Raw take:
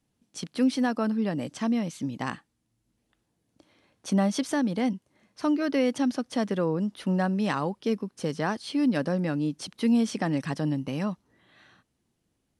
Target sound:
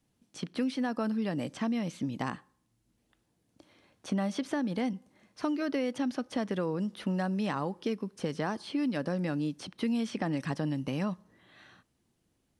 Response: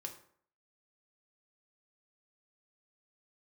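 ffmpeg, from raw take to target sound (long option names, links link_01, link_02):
-filter_complex "[0:a]asplit=2[link_01][link_02];[1:a]atrim=start_sample=2205[link_03];[link_02][link_03]afir=irnorm=-1:irlink=0,volume=-16dB[link_04];[link_01][link_04]amix=inputs=2:normalize=0,acrossover=split=1400|3500[link_05][link_06][link_07];[link_05]acompressor=threshold=-29dB:ratio=4[link_08];[link_06]acompressor=threshold=-44dB:ratio=4[link_09];[link_07]acompressor=threshold=-53dB:ratio=4[link_10];[link_08][link_09][link_10]amix=inputs=3:normalize=0"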